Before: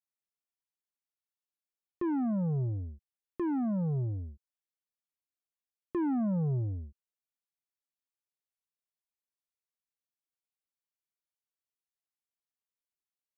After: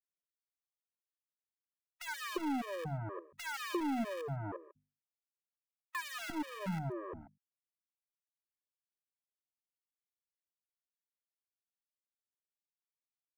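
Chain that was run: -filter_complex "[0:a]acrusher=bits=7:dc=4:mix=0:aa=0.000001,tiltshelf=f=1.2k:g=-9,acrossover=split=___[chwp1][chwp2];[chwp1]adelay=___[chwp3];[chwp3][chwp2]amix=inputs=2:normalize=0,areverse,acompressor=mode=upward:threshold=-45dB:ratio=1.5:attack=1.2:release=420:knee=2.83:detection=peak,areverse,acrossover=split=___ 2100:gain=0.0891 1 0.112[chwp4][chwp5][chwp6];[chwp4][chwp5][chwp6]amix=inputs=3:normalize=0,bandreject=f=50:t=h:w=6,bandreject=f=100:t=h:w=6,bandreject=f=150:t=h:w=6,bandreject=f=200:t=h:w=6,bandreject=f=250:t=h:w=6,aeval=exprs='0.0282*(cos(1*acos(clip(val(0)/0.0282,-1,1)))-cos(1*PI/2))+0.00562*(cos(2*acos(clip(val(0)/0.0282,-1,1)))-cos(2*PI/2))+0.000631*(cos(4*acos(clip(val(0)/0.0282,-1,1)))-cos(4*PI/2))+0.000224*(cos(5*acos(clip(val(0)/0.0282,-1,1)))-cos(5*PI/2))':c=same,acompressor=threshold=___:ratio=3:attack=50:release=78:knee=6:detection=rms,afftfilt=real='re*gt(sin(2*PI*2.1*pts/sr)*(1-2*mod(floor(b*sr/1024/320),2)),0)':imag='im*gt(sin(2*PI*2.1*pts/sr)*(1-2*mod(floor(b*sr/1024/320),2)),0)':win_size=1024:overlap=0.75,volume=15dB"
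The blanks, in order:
1200, 350, 170, -52dB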